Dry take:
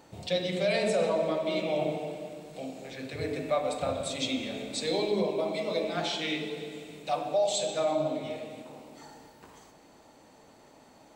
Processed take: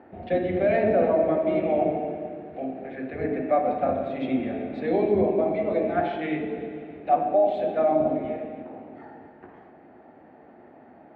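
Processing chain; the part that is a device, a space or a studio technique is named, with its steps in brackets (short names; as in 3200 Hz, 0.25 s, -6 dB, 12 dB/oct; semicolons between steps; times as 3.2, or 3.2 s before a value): sub-octave bass pedal (octaver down 1 oct, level -2 dB; speaker cabinet 83–2100 Hz, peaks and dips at 130 Hz -10 dB, 240 Hz +7 dB, 360 Hz +8 dB, 720 Hz +9 dB, 1000 Hz -5 dB, 1700 Hz +5 dB); gain +2 dB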